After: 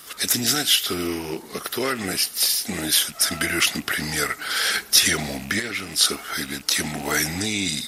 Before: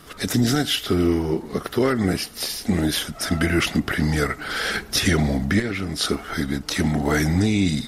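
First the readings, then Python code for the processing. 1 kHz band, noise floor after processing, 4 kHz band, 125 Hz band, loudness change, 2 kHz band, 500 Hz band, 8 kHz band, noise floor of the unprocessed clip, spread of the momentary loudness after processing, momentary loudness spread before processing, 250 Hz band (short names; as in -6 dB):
-1.0 dB, -42 dBFS, +5.5 dB, -11.5 dB, +1.0 dB, +1.5 dB, -6.0 dB, +9.0 dB, -41 dBFS, 9 LU, 6 LU, -8.5 dB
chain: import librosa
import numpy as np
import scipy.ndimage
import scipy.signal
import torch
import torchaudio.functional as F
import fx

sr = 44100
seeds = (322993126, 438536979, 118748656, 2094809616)

y = fx.rattle_buzz(x, sr, strikes_db=-30.0, level_db=-32.0)
y = fx.tilt_eq(y, sr, slope=3.5)
y = y * librosa.db_to_amplitude(-1.5)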